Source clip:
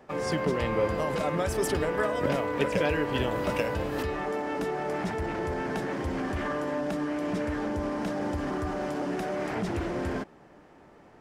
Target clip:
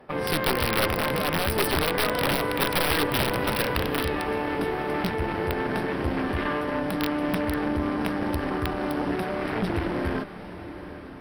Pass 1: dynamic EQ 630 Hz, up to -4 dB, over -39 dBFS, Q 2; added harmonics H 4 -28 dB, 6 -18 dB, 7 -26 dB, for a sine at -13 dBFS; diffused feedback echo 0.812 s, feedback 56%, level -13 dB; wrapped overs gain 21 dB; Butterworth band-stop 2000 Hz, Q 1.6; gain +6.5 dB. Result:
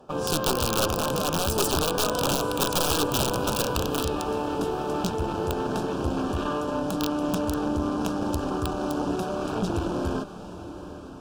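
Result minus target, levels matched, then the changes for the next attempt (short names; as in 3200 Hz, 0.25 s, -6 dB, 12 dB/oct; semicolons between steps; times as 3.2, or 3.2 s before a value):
2000 Hz band -7.5 dB
change: Butterworth band-stop 6900 Hz, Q 1.6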